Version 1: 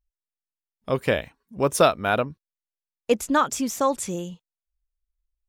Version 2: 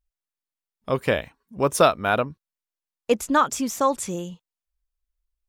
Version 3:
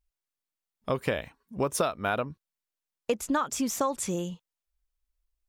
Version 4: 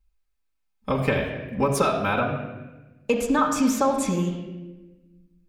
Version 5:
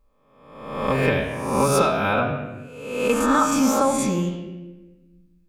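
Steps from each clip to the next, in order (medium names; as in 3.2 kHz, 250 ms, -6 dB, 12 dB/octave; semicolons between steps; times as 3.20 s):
peaking EQ 1.1 kHz +2.5 dB
compression 6:1, threshold -24 dBFS, peak gain reduction 12.5 dB
reverberation RT60 1.1 s, pre-delay 4 ms, DRR -6 dB
reverse spectral sustain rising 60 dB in 0.94 s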